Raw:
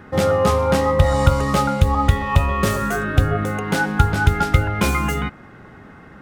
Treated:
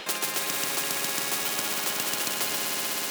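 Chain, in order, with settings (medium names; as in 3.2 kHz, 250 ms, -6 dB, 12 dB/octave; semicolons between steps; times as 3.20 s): high-pass 180 Hz 24 dB/octave; band-stop 6.7 kHz, Q 12; on a send: echo with a slow build-up 124 ms, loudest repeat 5, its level -10 dB; on the sum: speed mistake 7.5 ips tape played at 15 ips; spectrum-flattening compressor 4:1; trim -5.5 dB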